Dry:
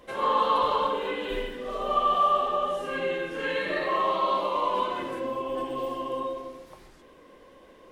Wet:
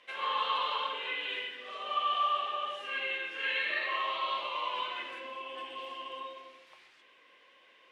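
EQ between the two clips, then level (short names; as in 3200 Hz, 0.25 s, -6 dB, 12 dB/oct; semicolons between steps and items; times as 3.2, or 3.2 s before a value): band-pass 2600 Hz, Q 2; +4.5 dB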